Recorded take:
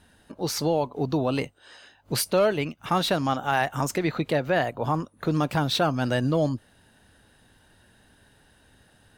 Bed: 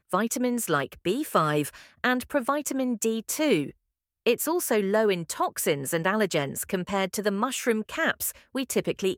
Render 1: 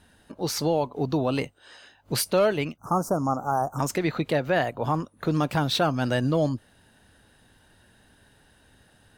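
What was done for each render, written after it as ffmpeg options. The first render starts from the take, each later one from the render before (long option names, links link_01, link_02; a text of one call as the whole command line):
ffmpeg -i in.wav -filter_complex "[0:a]asplit=3[link_01][link_02][link_03];[link_01]afade=type=out:start_time=2.76:duration=0.02[link_04];[link_02]asuperstop=centerf=2800:order=12:qfactor=0.64,afade=type=in:start_time=2.76:duration=0.02,afade=type=out:start_time=3.78:duration=0.02[link_05];[link_03]afade=type=in:start_time=3.78:duration=0.02[link_06];[link_04][link_05][link_06]amix=inputs=3:normalize=0" out.wav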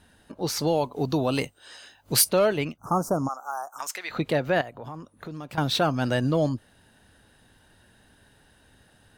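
ffmpeg -i in.wav -filter_complex "[0:a]asettb=1/sr,asplit=3[link_01][link_02][link_03];[link_01]atrim=end=0.674[link_04];[link_02]atrim=start=0.67:end=2.29,asetpts=PTS-STARTPTS,afade=type=in:duration=0.004:curve=qsin,afade=type=out:start_time=1.616:duration=0.004:curve=qsin,highshelf=frequency=4400:gain=10[link_05];[link_03]atrim=start=2.286[link_06];[link_04][link_05]acrossfade=duration=0.004:curve1=hsin:curve2=qsin[link_07];[link_07][link_06]acrossfade=duration=0.004:curve1=qsin:curve2=hsin,asplit=3[link_08][link_09][link_10];[link_08]afade=type=out:start_time=3.27:duration=0.02[link_11];[link_09]highpass=1200,afade=type=in:start_time=3.27:duration=0.02,afade=type=out:start_time=4.1:duration=0.02[link_12];[link_10]afade=type=in:start_time=4.1:duration=0.02[link_13];[link_11][link_12][link_13]amix=inputs=3:normalize=0,asettb=1/sr,asplit=3[link_14][link_15][link_16];[link_14]atrim=end=4.614[link_17];[link_15]atrim=start=4.61:end=5.58,asetpts=PTS-STARTPTS,afade=type=in:duration=0.004:curve=qsin,afade=type=out:start_time=0.966:duration=0.004:curve=qsin,acompressor=threshold=-40dB:ratio=2.5:attack=3.2:release=140:knee=1:detection=peak[link_18];[link_16]atrim=start=5.576[link_19];[link_17][link_18]acrossfade=duration=0.004:curve1=hsin:curve2=qsin[link_20];[link_20][link_19]acrossfade=duration=0.004:curve1=qsin:curve2=hsin" out.wav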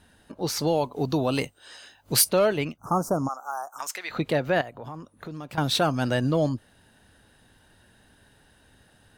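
ffmpeg -i in.wav -filter_complex "[0:a]asettb=1/sr,asplit=3[link_01][link_02][link_03];[link_01]atrim=end=5.644[link_04];[link_02]atrim=start=5.64:end=6.04,asetpts=PTS-STARTPTS,afade=type=in:duration=0.004:curve=qsin,afade=type=out:start_time=0.396:duration=0.004:curve=qsin,equalizer=frequency=9400:width=0.96:gain=6[link_05];[link_03]atrim=start=6.036[link_06];[link_04][link_05]acrossfade=duration=0.004:curve1=hsin:curve2=qsin[link_07];[link_07][link_06]acrossfade=duration=0.004:curve1=qsin:curve2=hsin" out.wav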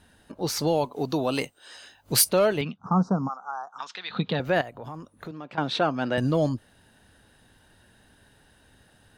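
ffmpeg -i in.wav -filter_complex "[0:a]asettb=1/sr,asplit=3[link_01][link_02][link_03];[link_01]atrim=end=0.854[link_04];[link_02]atrim=start=0.85:end=1.76,asetpts=PTS-STARTPTS,afade=type=in:duration=0.004:curve=qsin,afade=type=out:start_time=0.906:duration=0.004:curve=qsin,equalizer=frequency=62:width_type=o:width=1.9:gain=-13[link_05];[link_03]atrim=start=1.756[link_06];[link_04][link_05]acrossfade=duration=0.004:curve1=hsin:curve2=qsin[link_07];[link_07][link_06]acrossfade=duration=0.004:curve1=qsin:curve2=hsin,asettb=1/sr,asplit=3[link_08][link_09][link_10];[link_08]atrim=end=2.614[link_11];[link_09]atrim=start=2.61:end=4.4,asetpts=PTS-STARTPTS,afade=type=in:duration=0.004:curve=qsin,afade=type=out:start_time=1.786:duration=0.004:curve=qsin,highpass=120,equalizer=frequency=190:width_type=q:width=4:gain=10,equalizer=frequency=330:width_type=q:width=4:gain=-8,equalizer=frequency=600:width_type=q:width=4:gain=-9,equalizer=frequency=2100:width_type=q:width=4:gain=-7,equalizer=frequency=3600:width_type=q:width=4:gain=9,lowpass=frequency=4300:width=0.5412,lowpass=frequency=4300:width=1.3066[link_12];[link_10]atrim=start=4.396[link_13];[link_11][link_12]acrossfade=duration=0.004:curve1=hsin:curve2=qsin[link_14];[link_14][link_13]acrossfade=duration=0.004:curve1=qsin:curve2=hsin,asettb=1/sr,asplit=3[link_15][link_16][link_17];[link_15]atrim=end=5.314[link_18];[link_16]atrim=start=5.31:end=6.18,asetpts=PTS-STARTPTS,afade=type=in:duration=0.004:curve=qsin,afade=type=out:start_time=0.866:duration=0.004:curve=qsin,highpass=200,lowpass=3300[link_19];[link_17]atrim=start=6.176[link_20];[link_18][link_19]acrossfade=duration=0.004:curve1=hsin:curve2=qsin[link_21];[link_21][link_20]acrossfade=duration=0.004:curve1=qsin:curve2=hsin" out.wav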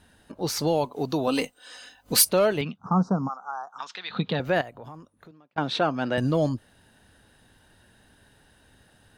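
ffmpeg -i in.wav -filter_complex "[0:a]asettb=1/sr,asplit=3[link_01][link_02][link_03];[link_01]atrim=end=1.274[link_04];[link_02]atrim=start=1.27:end=2.25,asetpts=PTS-STARTPTS,afade=type=in:duration=0.004:curve=qsin,afade=type=out:start_time=0.976:duration=0.004:curve=qsin,aecho=1:1:4:0.65,atrim=end_sample=43218[link_05];[link_03]atrim=start=2.246[link_06];[link_04][link_05]acrossfade=duration=0.004:curve1=hsin:curve2=qsin[link_07];[link_07][link_06]acrossfade=duration=0.004:curve1=qsin:curve2=hsin,asplit=2[link_08][link_09];[link_08]atrim=end=5.56,asetpts=PTS-STARTPTS,afade=type=out:start_time=4.52:duration=1.04[link_10];[link_09]atrim=start=5.56,asetpts=PTS-STARTPTS,afade=type=in:duration=0.004:curve=hsin[link_11];[link_10][link_11]concat=n=2:v=0:a=1" out.wav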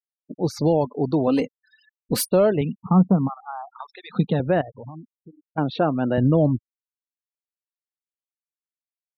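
ffmpeg -i in.wav -af "afftfilt=real='re*gte(hypot(re,im),0.0224)':imag='im*gte(hypot(re,im),0.0224)':win_size=1024:overlap=0.75,tiltshelf=frequency=970:gain=7.5" out.wav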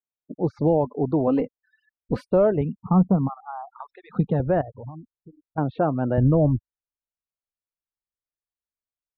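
ffmpeg -i in.wav -af "lowpass=1300,asubboost=boost=4:cutoff=95" out.wav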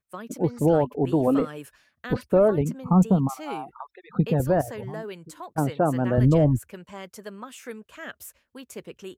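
ffmpeg -i in.wav -i bed.wav -filter_complex "[1:a]volume=-13dB[link_01];[0:a][link_01]amix=inputs=2:normalize=0" out.wav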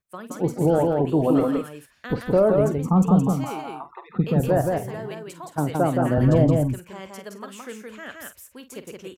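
ffmpeg -i in.wav -filter_complex "[0:a]asplit=2[link_01][link_02];[link_02]adelay=47,volume=-12.5dB[link_03];[link_01][link_03]amix=inputs=2:normalize=0,asplit=2[link_04][link_05];[link_05]aecho=0:1:169:0.708[link_06];[link_04][link_06]amix=inputs=2:normalize=0" out.wav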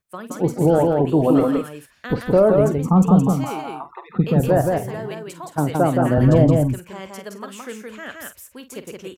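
ffmpeg -i in.wav -af "volume=3.5dB" out.wav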